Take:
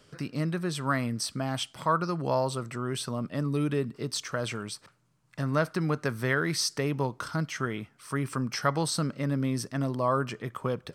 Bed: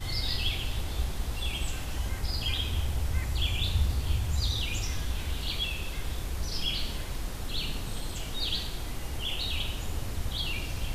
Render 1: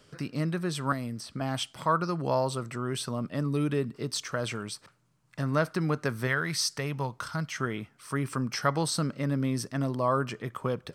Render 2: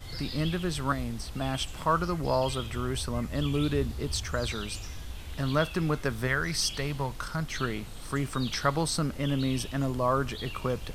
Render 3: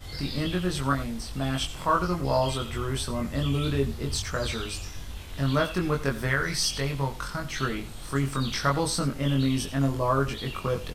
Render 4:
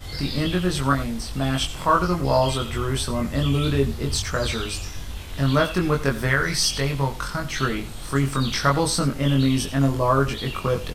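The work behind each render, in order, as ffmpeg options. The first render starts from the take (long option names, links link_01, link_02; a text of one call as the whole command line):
ffmpeg -i in.wav -filter_complex "[0:a]asettb=1/sr,asplit=3[link_01][link_02][link_03];[link_01]atrim=end=0.924[link_04];[link_02]atrim=start=0.92:end=1.41,asetpts=PTS-STARTPTS,afade=type=in:duration=0.004:curve=qsin,afade=type=out:start_time=0.486:duration=0.004:curve=qsin,acrossover=split=800|3600[link_05][link_06][link_07];[link_05]acompressor=threshold=-32dB:ratio=4[link_08];[link_06]acompressor=threshold=-46dB:ratio=4[link_09];[link_07]acompressor=threshold=-47dB:ratio=4[link_10];[link_08][link_09][link_10]amix=inputs=3:normalize=0[link_11];[link_03]atrim=start=1.406[link_12];[link_04][link_11]acrossfade=duration=0.004:curve1=hsin:curve2=qsin[link_13];[link_13][link_12]acrossfade=duration=0.004:curve1=qsin:curve2=hsin,asettb=1/sr,asplit=3[link_14][link_15][link_16];[link_14]atrim=end=6.274[link_17];[link_15]atrim=start=6.27:end=7.58,asetpts=PTS-STARTPTS,afade=type=in:duration=0.004:curve=qsin,afade=type=out:start_time=1.306:duration=0.004:curve=qsin,equalizer=frequency=330:width=1.1:gain=-8[link_18];[link_16]atrim=start=7.576[link_19];[link_17][link_18]acrossfade=duration=0.004:curve1=hsin:curve2=qsin[link_20];[link_20][link_19]acrossfade=duration=0.004:curve1=qsin:curve2=hsin" out.wav
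ffmpeg -i in.wav -i bed.wav -filter_complex "[1:a]volume=-8dB[link_01];[0:a][link_01]amix=inputs=2:normalize=0" out.wav
ffmpeg -i in.wav -filter_complex "[0:a]asplit=2[link_01][link_02];[link_02]adelay=22,volume=-2dB[link_03];[link_01][link_03]amix=inputs=2:normalize=0,aecho=1:1:87:0.168" out.wav
ffmpeg -i in.wav -af "volume=5dB" out.wav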